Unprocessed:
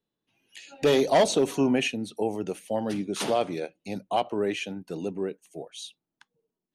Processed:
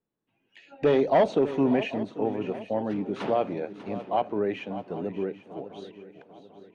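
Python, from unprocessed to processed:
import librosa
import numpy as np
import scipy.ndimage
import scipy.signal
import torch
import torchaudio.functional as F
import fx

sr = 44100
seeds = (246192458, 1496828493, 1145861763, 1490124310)

y = scipy.signal.sosfilt(scipy.signal.butter(2, 1900.0, 'lowpass', fs=sr, output='sos'), x)
y = fx.echo_swing(y, sr, ms=793, ratio=3, feedback_pct=41, wet_db=-13.5)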